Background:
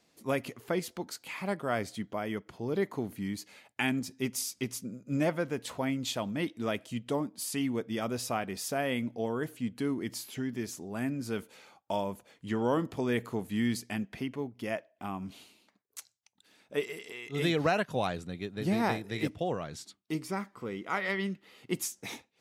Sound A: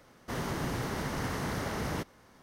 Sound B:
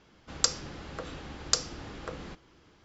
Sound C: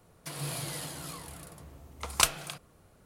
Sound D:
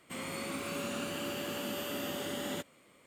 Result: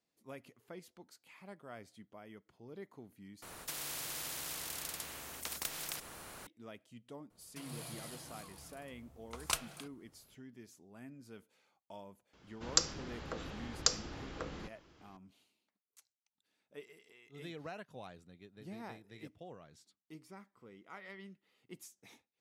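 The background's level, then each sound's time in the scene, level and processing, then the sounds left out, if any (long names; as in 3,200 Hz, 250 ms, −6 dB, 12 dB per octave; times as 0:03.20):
background −18.5 dB
0:03.42: overwrite with C −16 dB + every bin compressed towards the loudest bin 10 to 1
0:07.30: mix in C −10.5 dB
0:12.33: mix in B −3.5 dB
not used: A, D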